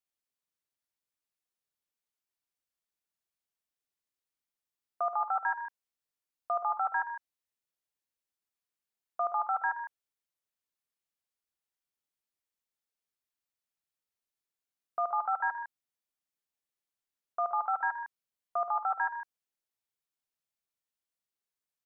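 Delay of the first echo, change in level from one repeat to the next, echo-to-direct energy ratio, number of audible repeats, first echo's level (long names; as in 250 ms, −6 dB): 56 ms, repeats not evenly spaced, −7.0 dB, 3, −16.0 dB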